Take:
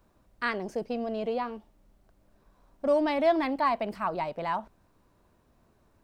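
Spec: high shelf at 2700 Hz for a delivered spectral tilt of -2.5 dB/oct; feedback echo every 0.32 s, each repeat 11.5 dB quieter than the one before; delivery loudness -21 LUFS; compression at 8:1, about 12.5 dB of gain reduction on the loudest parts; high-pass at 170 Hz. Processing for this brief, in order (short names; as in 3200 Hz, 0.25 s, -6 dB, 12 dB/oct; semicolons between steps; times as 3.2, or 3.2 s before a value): HPF 170 Hz; high shelf 2700 Hz +8.5 dB; compressor 8:1, threshold -32 dBFS; feedback echo 0.32 s, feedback 27%, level -11.5 dB; gain +16 dB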